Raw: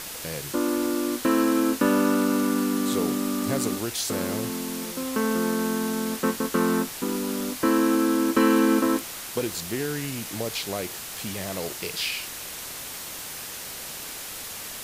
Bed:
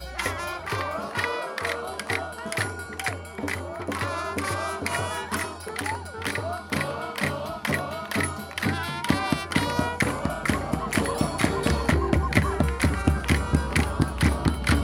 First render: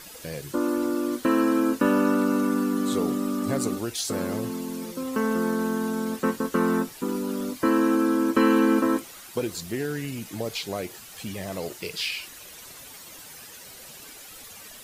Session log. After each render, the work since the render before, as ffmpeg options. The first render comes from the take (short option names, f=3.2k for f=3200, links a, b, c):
-af "afftdn=nr=11:nf=-37"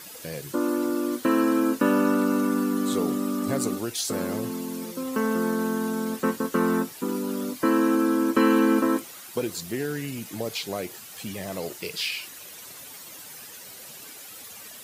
-af "highpass=100,highshelf=f=12k:g=5"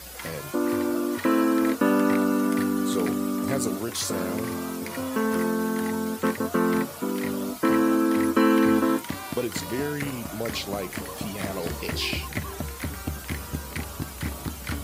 -filter_complex "[1:a]volume=-10dB[a];[0:a][a]amix=inputs=2:normalize=0"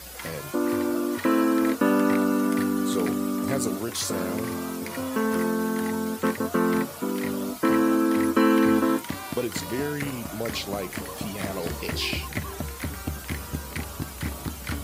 -af anull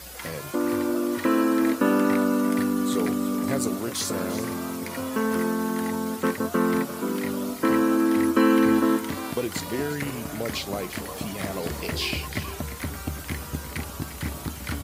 -af "aecho=1:1:349:0.224"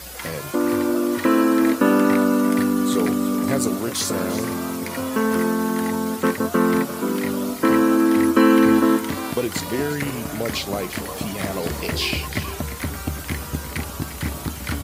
-af "volume=4.5dB"